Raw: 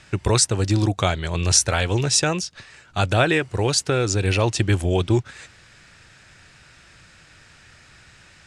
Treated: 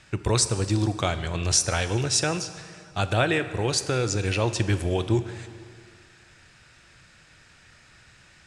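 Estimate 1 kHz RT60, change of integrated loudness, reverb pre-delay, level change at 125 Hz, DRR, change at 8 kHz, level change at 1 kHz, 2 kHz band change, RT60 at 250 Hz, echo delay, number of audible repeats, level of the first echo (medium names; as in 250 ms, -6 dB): 2.2 s, -4.0 dB, 3 ms, -4.5 dB, 10.5 dB, -4.0 dB, -4.0 dB, -4.0 dB, 2.0 s, no echo, no echo, no echo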